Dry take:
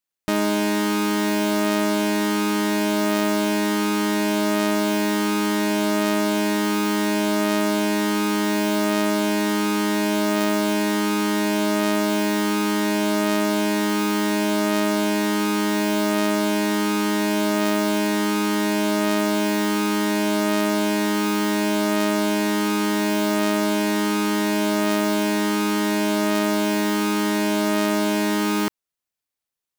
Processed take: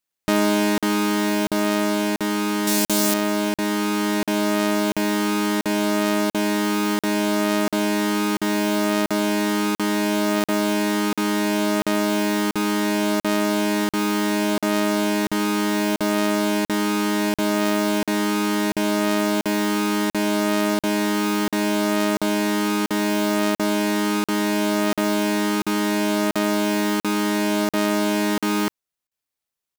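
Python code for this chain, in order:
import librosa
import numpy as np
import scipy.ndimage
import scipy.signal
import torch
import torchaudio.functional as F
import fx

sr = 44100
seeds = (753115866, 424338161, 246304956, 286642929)

y = fx.bass_treble(x, sr, bass_db=3, treble_db=14, at=(2.67, 3.14))
y = fx.rider(y, sr, range_db=10, speed_s=2.0)
y = fx.buffer_crackle(y, sr, first_s=0.78, period_s=0.69, block=2048, kind='zero')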